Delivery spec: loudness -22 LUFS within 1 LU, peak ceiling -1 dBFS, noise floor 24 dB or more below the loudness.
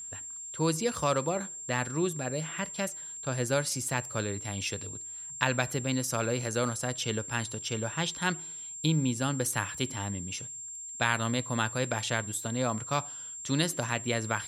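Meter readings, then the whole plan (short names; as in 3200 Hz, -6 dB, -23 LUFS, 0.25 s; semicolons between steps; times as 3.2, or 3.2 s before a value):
steady tone 7400 Hz; tone level -39 dBFS; loudness -31.0 LUFS; peak -6.0 dBFS; loudness target -22.0 LUFS
-> notch 7400 Hz, Q 30; gain +9 dB; limiter -1 dBFS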